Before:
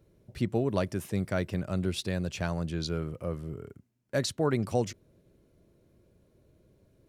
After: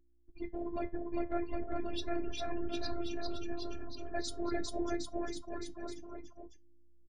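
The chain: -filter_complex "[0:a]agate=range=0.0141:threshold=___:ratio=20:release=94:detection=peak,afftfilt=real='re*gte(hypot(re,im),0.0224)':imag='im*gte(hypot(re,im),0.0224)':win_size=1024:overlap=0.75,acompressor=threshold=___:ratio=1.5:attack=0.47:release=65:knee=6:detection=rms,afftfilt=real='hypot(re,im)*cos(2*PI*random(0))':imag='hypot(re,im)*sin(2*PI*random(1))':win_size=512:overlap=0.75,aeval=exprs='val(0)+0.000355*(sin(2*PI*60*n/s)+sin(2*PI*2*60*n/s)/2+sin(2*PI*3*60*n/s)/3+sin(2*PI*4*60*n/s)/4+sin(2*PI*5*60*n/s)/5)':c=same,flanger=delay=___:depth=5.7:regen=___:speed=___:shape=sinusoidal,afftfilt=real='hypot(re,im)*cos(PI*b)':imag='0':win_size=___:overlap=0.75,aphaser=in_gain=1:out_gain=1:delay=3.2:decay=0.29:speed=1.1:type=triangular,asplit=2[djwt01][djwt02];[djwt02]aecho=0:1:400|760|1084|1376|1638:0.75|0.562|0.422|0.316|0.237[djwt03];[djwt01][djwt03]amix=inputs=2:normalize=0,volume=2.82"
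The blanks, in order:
0.00178, 0.0224, 7.9, 74, 0.42, 512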